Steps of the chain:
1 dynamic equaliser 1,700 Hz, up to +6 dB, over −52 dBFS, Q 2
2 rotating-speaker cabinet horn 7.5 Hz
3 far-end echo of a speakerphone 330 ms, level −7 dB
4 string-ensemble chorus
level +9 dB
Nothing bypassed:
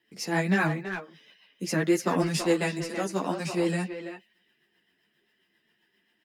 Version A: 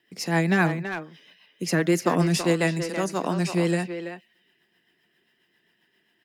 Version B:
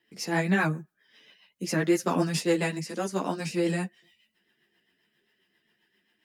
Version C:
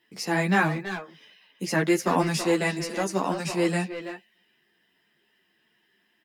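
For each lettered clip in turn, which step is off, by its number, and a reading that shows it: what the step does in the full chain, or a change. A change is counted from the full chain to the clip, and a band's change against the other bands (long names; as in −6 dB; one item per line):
4, 125 Hz band +2.5 dB
3, change in momentary loudness spread −5 LU
2, 1 kHz band +3.0 dB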